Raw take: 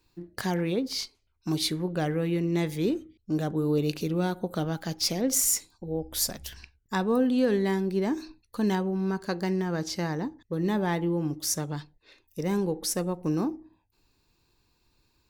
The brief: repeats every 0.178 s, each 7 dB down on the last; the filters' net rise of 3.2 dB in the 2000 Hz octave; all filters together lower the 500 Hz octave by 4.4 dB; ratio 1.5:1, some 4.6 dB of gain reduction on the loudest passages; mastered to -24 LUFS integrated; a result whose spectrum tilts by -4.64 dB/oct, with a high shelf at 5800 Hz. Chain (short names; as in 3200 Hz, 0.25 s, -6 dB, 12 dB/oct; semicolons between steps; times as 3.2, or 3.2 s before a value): bell 500 Hz -6 dB; bell 2000 Hz +5 dB; high shelf 5800 Hz -6 dB; compressor 1.5:1, threshold -36 dBFS; feedback echo 0.178 s, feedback 45%, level -7 dB; gain +9 dB